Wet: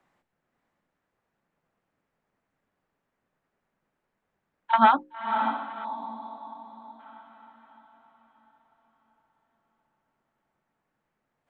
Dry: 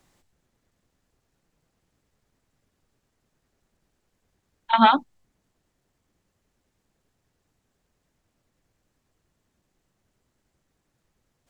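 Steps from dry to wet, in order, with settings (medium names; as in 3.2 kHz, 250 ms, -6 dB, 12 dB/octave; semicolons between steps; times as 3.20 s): peaking EQ 340 Hz -6 dB 1.4 oct; hum notches 60/120/180/240/300/360/420/480/540 Hz; on a send: echo that smears into a reverb 557 ms, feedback 45%, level -7 dB; on the sum: time-frequency box 5.84–7.00 s, 1.2–3.3 kHz -18 dB; three-band isolator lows -18 dB, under 170 Hz, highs -19 dB, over 2.4 kHz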